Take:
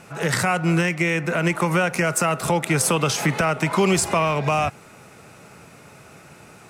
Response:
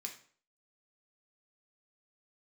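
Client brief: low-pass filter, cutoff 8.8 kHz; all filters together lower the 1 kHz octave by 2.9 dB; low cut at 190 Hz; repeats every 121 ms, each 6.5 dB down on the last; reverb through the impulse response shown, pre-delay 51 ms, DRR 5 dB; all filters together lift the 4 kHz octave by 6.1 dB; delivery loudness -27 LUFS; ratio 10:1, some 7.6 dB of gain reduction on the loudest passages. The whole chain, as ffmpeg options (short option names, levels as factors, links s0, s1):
-filter_complex "[0:a]highpass=190,lowpass=8800,equalizer=f=1000:t=o:g=-4.5,equalizer=f=4000:t=o:g=9,acompressor=threshold=0.0631:ratio=10,aecho=1:1:121|242|363|484|605|726:0.473|0.222|0.105|0.0491|0.0231|0.0109,asplit=2[s0][s1];[1:a]atrim=start_sample=2205,adelay=51[s2];[s1][s2]afir=irnorm=-1:irlink=0,volume=0.75[s3];[s0][s3]amix=inputs=2:normalize=0,volume=0.841"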